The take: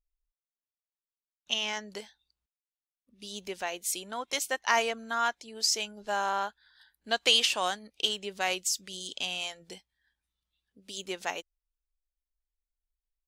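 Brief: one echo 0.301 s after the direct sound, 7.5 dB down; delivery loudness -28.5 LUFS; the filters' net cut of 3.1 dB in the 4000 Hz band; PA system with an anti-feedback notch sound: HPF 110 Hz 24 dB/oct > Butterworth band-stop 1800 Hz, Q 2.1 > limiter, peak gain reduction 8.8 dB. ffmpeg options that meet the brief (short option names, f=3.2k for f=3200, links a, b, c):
-af "highpass=f=110:w=0.5412,highpass=f=110:w=1.3066,asuperstop=centerf=1800:order=8:qfactor=2.1,equalizer=f=4k:t=o:g=-4.5,aecho=1:1:301:0.422,volume=6.5dB,alimiter=limit=-16dB:level=0:latency=1"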